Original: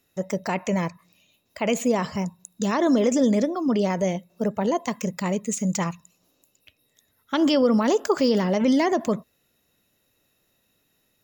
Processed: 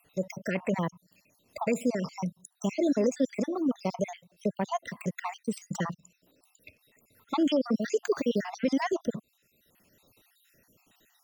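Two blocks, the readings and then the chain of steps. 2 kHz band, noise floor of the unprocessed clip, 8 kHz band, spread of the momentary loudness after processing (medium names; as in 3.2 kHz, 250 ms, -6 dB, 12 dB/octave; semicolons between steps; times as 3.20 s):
-6.0 dB, -70 dBFS, -10.5 dB, 9 LU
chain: random holes in the spectrogram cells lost 58%; three bands compressed up and down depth 40%; trim -3.5 dB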